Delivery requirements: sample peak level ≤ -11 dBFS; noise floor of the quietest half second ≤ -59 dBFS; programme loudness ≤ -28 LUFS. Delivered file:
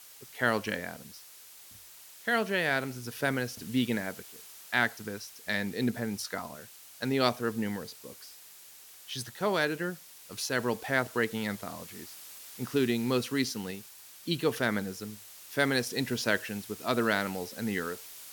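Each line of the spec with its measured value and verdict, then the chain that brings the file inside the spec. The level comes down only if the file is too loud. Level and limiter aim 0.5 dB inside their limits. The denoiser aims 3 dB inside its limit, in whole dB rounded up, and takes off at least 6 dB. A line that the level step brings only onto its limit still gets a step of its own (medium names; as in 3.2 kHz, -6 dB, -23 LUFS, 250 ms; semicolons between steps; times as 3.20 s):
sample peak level -10.5 dBFS: fail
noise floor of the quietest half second -52 dBFS: fail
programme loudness -31.5 LUFS: pass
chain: noise reduction 10 dB, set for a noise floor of -52 dBFS; peak limiter -11.5 dBFS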